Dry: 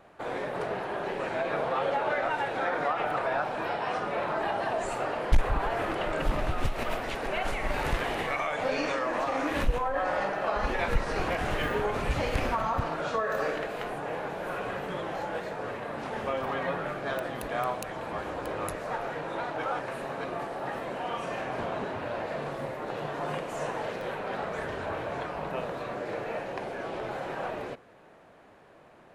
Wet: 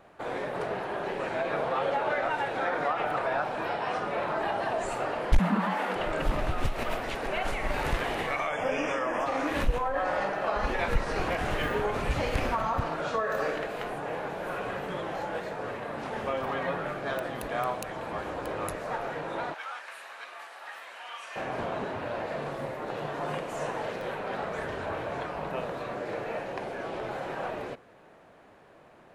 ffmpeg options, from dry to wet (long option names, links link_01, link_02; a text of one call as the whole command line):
ffmpeg -i in.wav -filter_complex "[0:a]asettb=1/sr,asplit=3[link_01][link_02][link_03];[link_01]atrim=end=5.394[link_04];[link_02]atrim=start=5.39:end=5.96,asetpts=PTS-STARTPTS,afade=type=in:duration=0.004:curve=qsin,afade=type=out:start_time=0.566:duration=0.004:curve=qsin,afreqshift=170[link_05];[link_03]atrim=start=5.956[link_06];[link_04][link_05]acrossfade=duration=0.004:curve1=hsin:curve2=qsin[link_07];[link_07][link_06]acrossfade=duration=0.004:curve1=qsin:curve2=hsin,asettb=1/sr,asplit=3[link_08][link_09][link_10];[link_08]atrim=end=8.494[link_11];[link_09]atrim=start=8.49:end=9.26,asetpts=PTS-STARTPTS,afade=type=in:duration=0.004:curve=qsin,afade=type=out:start_time=0.766:duration=0.004:curve=qsin,asuperstop=centerf=4100:order=20:qfactor=3.2[link_12];[link_10]atrim=start=9.256[link_13];[link_11][link_12]acrossfade=duration=0.004:curve1=hsin:curve2=qsin[link_14];[link_14][link_13]acrossfade=duration=0.004:curve1=qsin:curve2=hsin,asettb=1/sr,asplit=3[link_15][link_16][link_17];[link_15]atrim=end=19.544[link_18];[link_16]atrim=start=19.54:end=21.36,asetpts=PTS-STARTPTS,afade=type=in:duration=0.004:curve=qsin,afade=type=out:start_time=1.816:duration=0.004:curve=qsin,highpass=1500[link_19];[link_17]atrim=start=21.356[link_20];[link_18][link_19]acrossfade=duration=0.004:curve1=hsin:curve2=qsin[link_21];[link_21][link_20]acrossfade=duration=0.004:curve1=qsin:curve2=hsin" out.wav